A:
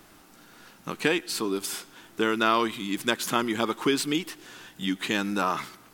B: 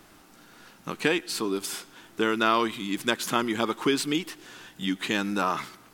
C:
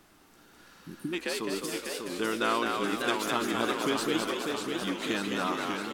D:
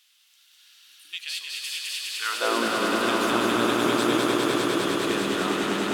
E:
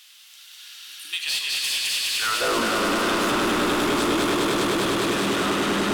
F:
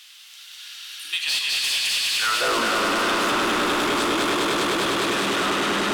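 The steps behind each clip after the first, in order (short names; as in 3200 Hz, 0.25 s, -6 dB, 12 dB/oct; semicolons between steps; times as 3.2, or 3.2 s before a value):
high shelf 12000 Hz -4 dB
frequency-shifting echo 0.21 s, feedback 48%, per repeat +60 Hz, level -4 dB; spectral repair 0.71–1.11, 400–8500 Hz before; warbling echo 0.596 s, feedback 63%, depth 159 cents, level -5 dB; gain -6 dB
high-pass sweep 3200 Hz -> 60 Hz, 2.12–2.85; swelling echo 0.101 s, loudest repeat 5, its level -5.5 dB
in parallel at +3 dB: compressor, threshold -34 dBFS, peak gain reduction 15 dB; on the sum: soft clip -24 dBFS, distortion -8 dB; reverb RT60 0.40 s, pre-delay 34 ms, DRR 10 dB; gain +4.5 dB
overdrive pedal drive 8 dB, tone 6900 Hz, clips at -14 dBFS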